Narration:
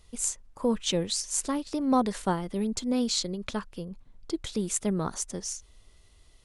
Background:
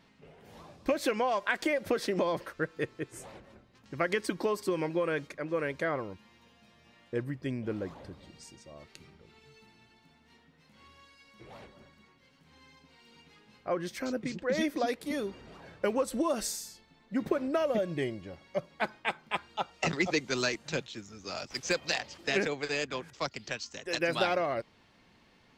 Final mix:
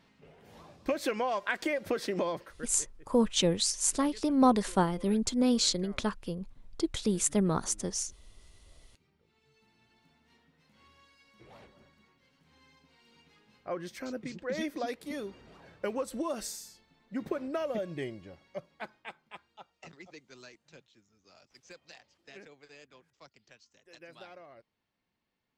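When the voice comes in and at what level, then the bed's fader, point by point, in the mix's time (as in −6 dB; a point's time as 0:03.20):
2.50 s, +1.0 dB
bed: 0:02.27 −2 dB
0:02.95 −22 dB
0:08.65 −22 dB
0:09.99 −4.5 dB
0:18.26 −4.5 dB
0:19.97 −21.5 dB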